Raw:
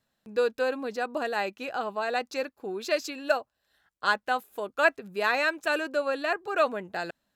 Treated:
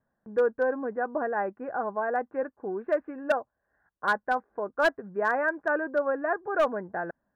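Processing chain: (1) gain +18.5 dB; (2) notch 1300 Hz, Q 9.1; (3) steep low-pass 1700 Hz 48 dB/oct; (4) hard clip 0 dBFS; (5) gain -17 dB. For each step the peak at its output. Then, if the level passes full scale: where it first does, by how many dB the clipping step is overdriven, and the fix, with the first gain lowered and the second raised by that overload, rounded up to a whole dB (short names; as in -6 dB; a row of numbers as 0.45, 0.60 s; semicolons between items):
+10.0, +8.5, +7.5, 0.0, -17.0 dBFS; step 1, 7.5 dB; step 1 +10.5 dB, step 5 -9 dB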